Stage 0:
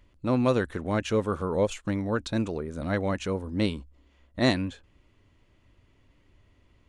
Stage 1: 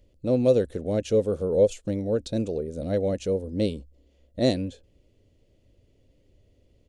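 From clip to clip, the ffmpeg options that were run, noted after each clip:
ffmpeg -i in.wav -af "firequalizer=gain_entry='entry(340,0);entry(500,8);entry(1000,-17);entry(2900,-5);entry(4700,0)':delay=0.05:min_phase=1" out.wav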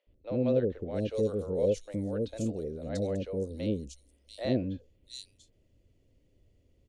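ffmpeg -i in.wav -filter_complex "[0:a]acrossover=split=560|3800[link_01][link_02][link_03];[link_01]adelay=70[link_04];[link_03]adelay=690[link_05];[link_04][link_02][link_05]amix=inputs=3:normalize=0,volume=-4.5dB" out.wav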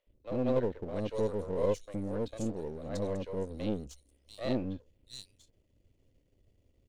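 ffmpeg -i in.wav -af "aeval=exprs='if(lt(val(0),0),0.447*val(0),val(0))':channel_layout=same" out.wav

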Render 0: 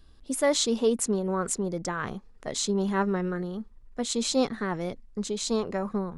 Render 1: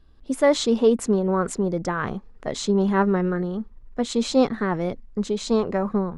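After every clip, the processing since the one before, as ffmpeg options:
ffmpeg -i in.wav -af "lowpass=frequency=2100:poles=1,dynaudnorm=framelen=150:gausssize=3:maxgain=6.5dB" out.wav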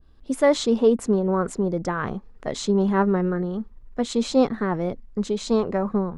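ffmpeg -i in.wav -af "adynamicequalizer=threshold=0.0158:dfrequency=1500:dqfactor=0.7:tfrequency=1500:tqfactor=0.7:attack=5:release=100:ratio=0.375:range=3:mode=cutabove:tftype=highshelf" out.wav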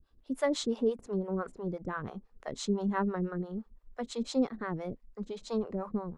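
ffmpeg -i in.wav -filter_complex "[0:a]acrossover=split=480[link_01][link_02];[link_01]aeval=exprs='val(0)*(1-1/2+1/2*cos(2*PI*5.9*n/s))':channel_layout=same[link_03];[link_02]aeval=exprs='val(0)*(1-1/2-1/2*cos(2*PI*5.9*n/s))':channel_layout=same[link_04];[link_03][link_04]amix=inputs=2:normalize=0,volume=-6dB" out.wav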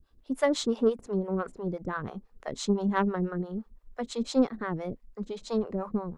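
ffmpeg -i in.wav -af "aeval=exprs='0.141*(cos(1*acos(clip(val(0)/0.141,-1,1)))-cos(1*PI/2))+0.0141*(cos(3*acos(clip(val(0)/0.141,-1,1)))-cos(3*PI/2))+0.000891*(cos(6*acos(clip(val(0)/0.141,-1,1)))-cos(6*PI/2))':channel_layout=same,volume=6dB" out.wav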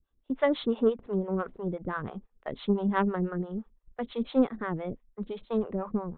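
ffmpeg -i in.wav -af "aresample=8000,aresample=44100,agate=range=-12dB:threshold=-44dB:ratio=16:detection=peak" out.wav

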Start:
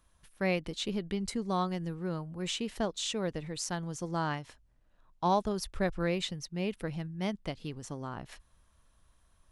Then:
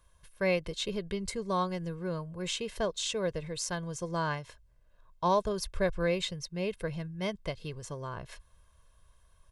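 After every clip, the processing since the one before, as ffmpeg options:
ffmpeg -i in.wav -af "aecho=1:1:1.9:0.67" out.wav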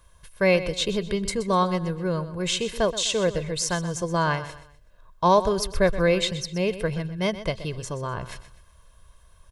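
ffmpeg -i in.wav -af "aecho=1:1:125|250|375:0.211|0.074|0.0259,volume=8.5dB" out.wav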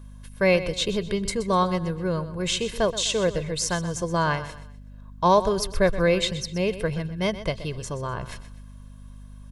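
ffmpeg -i in.wav -af "aeval=exprs='val(0)+0.00794*(sin(2*PI*50*n/s)+sin(2*PI*2*50*n/s)/2+sin(2*PI*3*50*n/s)/3+sin(2*PI*4*50*n/s)/4+sin(2*PI*5*50*n/s)/5)':channel_layout=same" out.wav

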